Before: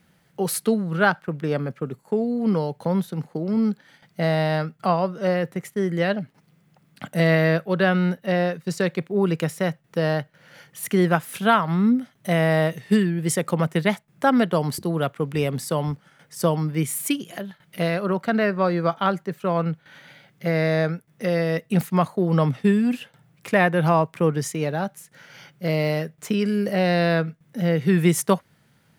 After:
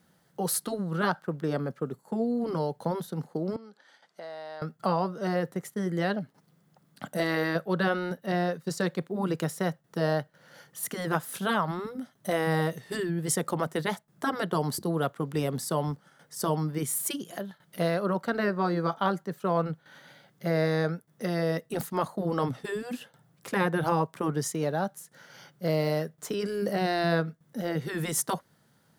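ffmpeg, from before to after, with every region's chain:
ffmpeg -i in.wav -filter_complex "[0:a]asettb=1/sr,asplit=3[link_01][link_02][link_03];[link_01]atrim=end=3.564[link_04];[link_02]atrim=start=3.56:end=4.62,asetpts=PTS-STARTPTS,afade=type=in:duration=0.004:curve=qsin,afade=type=out:start_time=1.056:duration=0.004:curve=qsin,acompressor=threshold=-31dB:ratio=6:attack=3.2:release=140:knee=1:detection=peak,highpass=480,lowpass=7200[link_05];[link_03]atrim=start=4.616[link_06];[link_04][link_05]acrossfade=duration=0.004:curve1=hsin:curve2=qsin[link_07];[link_07][link_06]acrossfade=duration=0.004:curve1=qsin:curve2=hsin,lowshelf=frequency=140:gain=-9,afftfilt=real='re*lt(hypot(re,im),0.631)':imag='im*lt(hypot(re,im),0.631)':win_size=1024:overlap=0.75,equalizer=frequency=2400:width_type=o:width=0.71:gain=-10,volume=-1.5dB" out.wav

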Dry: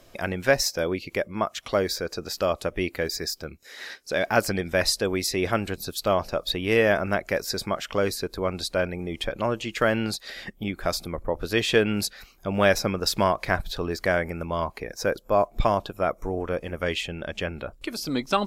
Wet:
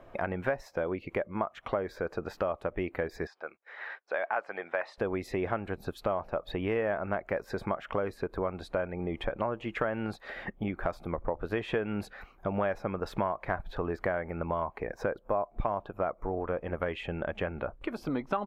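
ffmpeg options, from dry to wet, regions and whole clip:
ffmpeg -i in.wav -filter_complex "[0:a]asettb=1/sr,asplit=3[link_01][link_02][link_03];[link_01]atrim=end=3.274[link_04];[link_02]atrim=start=3.27:end=4.98,asetpts=PTS-STARTPTS,afade=type=in:duration=0.004:curve=qsin,afade=type=out:start_time=1.706:duration=0.004:curve=qsin,agate=range=-15dB:threshold=-50dB:ratio=16:release=100:detection=peak,highpass=670,lowpass=3600[link_05];[link_03]atrim=start=4.976[link_06];[link_04][link_05]acrossfade=duration=0.004:curve1=hsin:curve2=qsin[link_07];[link_07][link_06]acrossfade=duration=0.004:curve1=qsin:curve2=hsin,firequalizer=gain_entry='entry(270,0);entry(830,6);entry(4800,-22)':delay=0.05:min_phase=1,acompressor=threshold=-29dB:ratio=4" out.wav

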